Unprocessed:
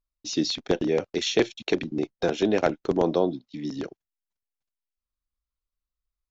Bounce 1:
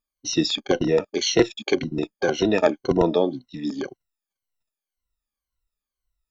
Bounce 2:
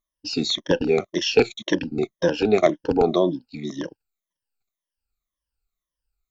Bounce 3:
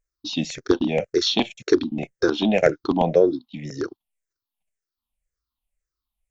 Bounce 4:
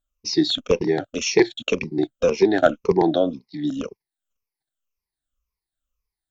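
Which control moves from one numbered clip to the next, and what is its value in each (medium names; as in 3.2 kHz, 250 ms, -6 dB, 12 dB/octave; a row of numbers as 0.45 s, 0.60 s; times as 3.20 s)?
drifting ripple filter, ripples per octave: 2, 1.2, 0.52, 0.83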